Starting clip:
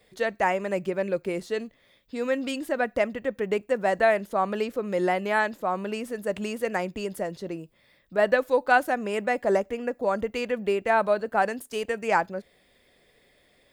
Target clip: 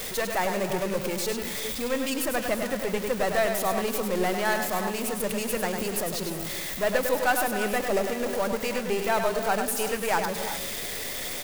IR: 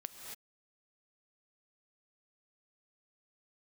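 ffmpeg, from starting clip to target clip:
-filter_complex "[0:a]aeval=exprs='val(0)+0.5*0.0398*sgn(val(0))':c=same,atempo=1.2,highshelf=f=4200:g=9.5,aeval=exprs='0.398*(cos(1*acos(clip(val(0)/0.398,-1,1)))-cos(1*PI/2))+0.0282*(cos(8*acos(clip(val(0)/0.398,-1,1)))-cos(8*PI/2))':c=same,asplit=2[s0][s1];[1:a]atrim=start_sample=2205,adelay=101[s2];[s1][s2]afir=irnorm=-1:irlink=0,volume=0.794[s3];[s0][s3]amix=inputs=2:normalize=0,volume=0.562"

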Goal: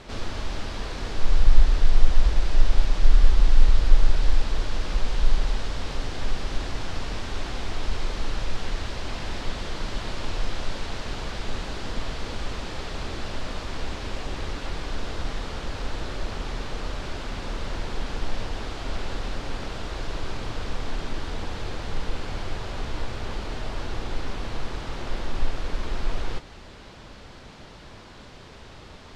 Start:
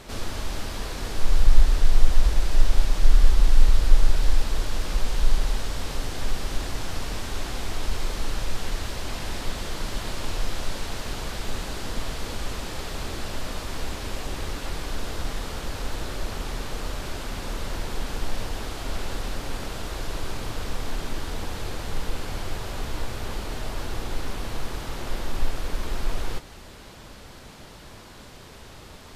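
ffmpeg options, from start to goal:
-af "lowpass=5400"

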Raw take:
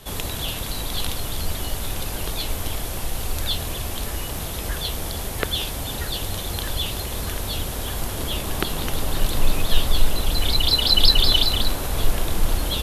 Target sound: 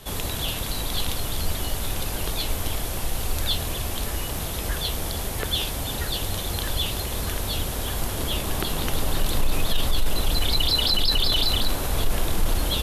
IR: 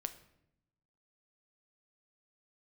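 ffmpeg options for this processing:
-af "alimiter=limit=0.237:level=0:latency=1:release=11"

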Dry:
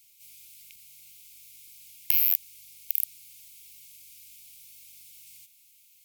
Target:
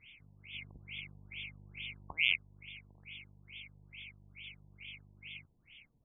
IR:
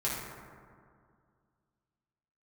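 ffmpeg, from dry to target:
-filter_complex "[0:a]aresample=32000,aresample=44100,asettb=1/sr,asplit=3[s0][s1][s2];[s0]atrim=end=0.544[s3];[s1]atrim=start=0.54:end=2.13,asetpts=PTS-STARTPTS,afade=t=in:d=0.004:c=qsin,afade=t=out:st=1.586:d=0.004:c=qsin,acontrast=26[s4];[s2]atrim=start=2.126[s5];[s3][s4]acrossfade=d=0.004:c1=hsin:c2=qsin[s6];[s6][s5]acrossfade=d=0.004:c1=qsin:c2=hsin,afftfilt=real='re*lt(b*sr/1024,990*pow(3600/990,0.5+0.5*sin(2*PI*2.3*pts/sr)))':imag='im*lt(b*sr/1024,990*pow(3600/990,0.5+0.5*sin(2*PI*2.3*pts/sr)))':win_size=1024:overlap=0.75,volume=7.5"

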